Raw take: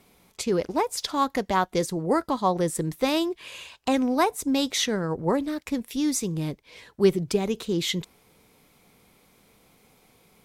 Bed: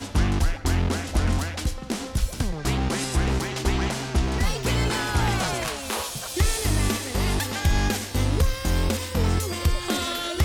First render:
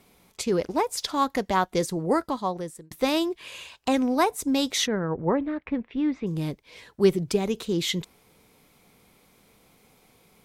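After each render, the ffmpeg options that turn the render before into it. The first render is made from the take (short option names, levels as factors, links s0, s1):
-filter_complex "[0:a]asplit=3[s0][s1][s2];[s0]afade=t=out:st=4.86:d=0.02[s3];[s1]lowpass=f=2500:w=0.5412,lowpass=f=2500:w=1.3066,afade=t=in:st=4.86:d=0.02,afade=t=out:st=6.26:d=0.02[s4];[s2]afade=t=in:st=6.26:d=0.02[s5];[s3][s4][s5]amix=inputs=3:normalize=0,asplit=2[s6][s7];[s6]atrim=end=2.91,asetpts=PTS-STARTPTS,afade=t=out:st=2.14:d=0.77[s8];[s7]atrim=start=2.91,asetpts=PTS-STARTPTS,afade=t=in:d=0.004:c=hsin[s9];[s8][s9]concat=n=2:v=0:a=1"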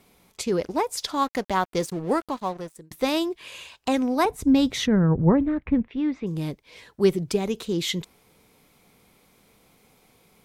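-filter_complex "[0:a]asettb=1/sr,asplit=3[s0][s1][s2];[s0]atrim=end=1.234[s3];[s1]atrim=start=1.23:end=2.76,asetpts=PTS-STARTPTS,afade=t=in:d=0.004:c=qsin,afade=t=out:st=1.526:d=0.004:c=qsin,aeval=exprs='sgn(val(0))*max(abs(val(0))-0.00708,0)':c=same[s4];[s2]atrim=start=2.756[s5];[s3][s4]acrossfade=d=0.004:c1=hsin:c2=qsin[s6];[s6][s5]acrossfade=d=0.004:c1=qsin:c2=hsin,asettb=1/sr,asplit=3[s7][s8][s9];[s7]atrim=end=4.254[s10];[s8]atrim=start=4.25:end=5.88,asetpts=PTS-STARTPTS,afade=t=in:d=0.004:c=qsin,afade=t=out:st=1.626:d=0.004:c=qsin,bass=f=250:g=15,treble=f=4000:g=-7[s11];[s9]atrim=start=5.876[s12];[s10][s11]acrossfade=d=0.004:c1=hsin:c2=qsin[s13];[s13][s12]acrossfade=d=0.004:c1=qsin:c2=hsin"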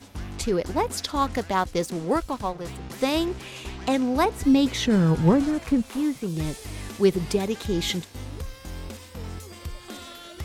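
-filter_complex "[1:a]volume=0.211[s0];[0:a][s0]amix=inputs=2:normalize=0"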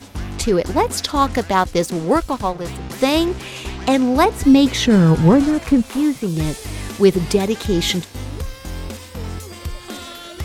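-af "volume=2.37,alimiter=limit=0.794:level=0:latency=1"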